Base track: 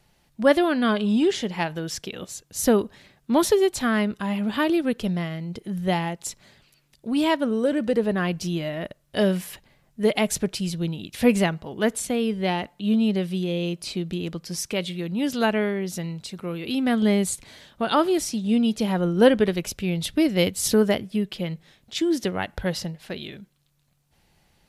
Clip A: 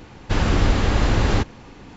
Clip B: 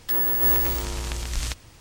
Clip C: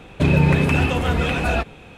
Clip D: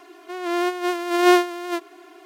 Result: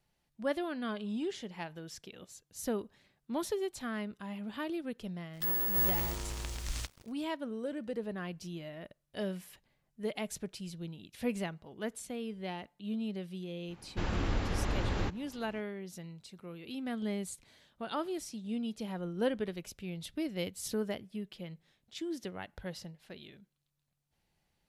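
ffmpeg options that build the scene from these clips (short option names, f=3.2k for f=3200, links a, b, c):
-filter_complex "[0:a]volume=-15.5dB[a];[2:a]acrusher=bits=6:mix=0:aa=0.5[b];[1:a]bass=f=250:g=-1,treble=f=4k:g=-3[c];[b]atrim=end=1.8,asetpts=PTS-STARTPTS,volume=-9.5dB,afade=t=in:d=0.004:c=hsin,afade=t=out:st=1.796:d=0.004:c=hsin,adelay=235053S[d];[c]atrim=end=1.96,asetpts=PTS-STARTPTS,volume=-13.5dB,afade=t=in:d=0.05,afade=t=out:st=1.91:d=0.05,adelay=13670[e];[a][d][e]amix=inputs=3:normalize=0"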